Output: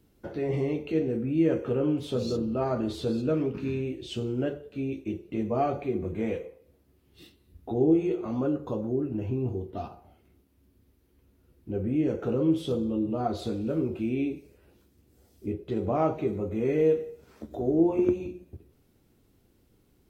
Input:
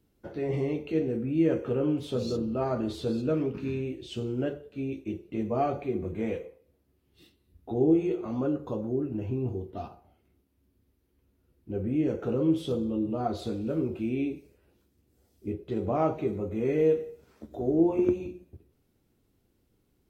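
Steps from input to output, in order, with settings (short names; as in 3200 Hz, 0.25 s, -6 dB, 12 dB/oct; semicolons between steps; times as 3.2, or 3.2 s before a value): in parallel at 0 dB: compressor, threshold -46 dBFS, peak gain reduction 25.5 dB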